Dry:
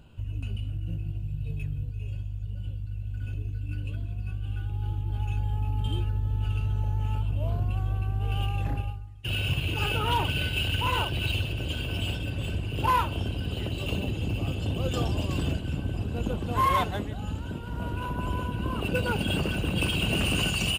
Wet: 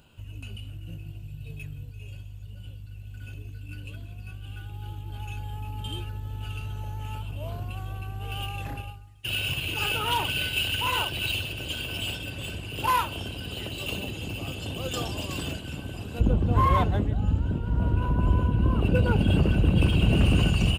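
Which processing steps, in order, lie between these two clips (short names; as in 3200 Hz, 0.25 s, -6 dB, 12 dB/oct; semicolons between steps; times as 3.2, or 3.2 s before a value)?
tilt +2 dB/oct, from 16.19 s -2.5 dB/oct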